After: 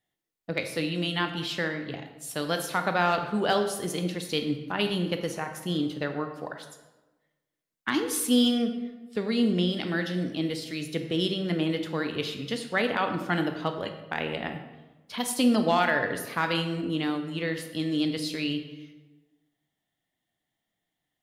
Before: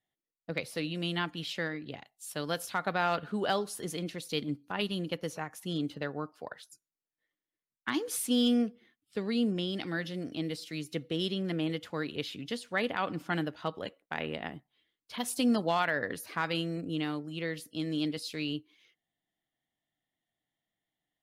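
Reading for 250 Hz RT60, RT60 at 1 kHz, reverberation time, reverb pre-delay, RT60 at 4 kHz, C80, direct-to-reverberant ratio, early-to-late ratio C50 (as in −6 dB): 1.4 s, 1.1 s, 1.2 s, 18 ms, 0.75 s, 10.0 dB, 6.0 dB, 8.0 dB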